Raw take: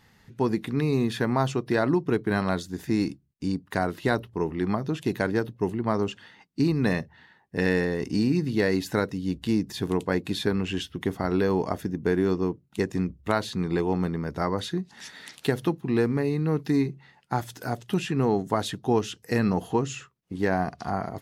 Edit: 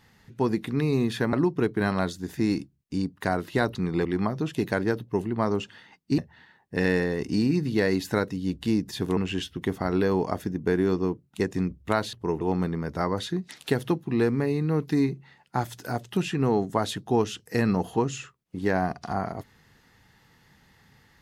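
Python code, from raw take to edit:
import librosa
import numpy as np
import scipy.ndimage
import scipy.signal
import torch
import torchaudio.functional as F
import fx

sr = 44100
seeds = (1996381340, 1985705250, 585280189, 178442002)

y = fx.edit(x, sr, fx.cut(start_s=1.33, length_s=0.5),
    fx.swap(start_s=4.25, length_s=0.28, other_s=13.52, other_length_s=0.3),
    fx.cut(start_s=6.66, length_s=0.33),
    fx.cut(start_s=9.98, length_s=0.58),
    fx.cut(start_s=14.9, length_s=0.36), tone=tone)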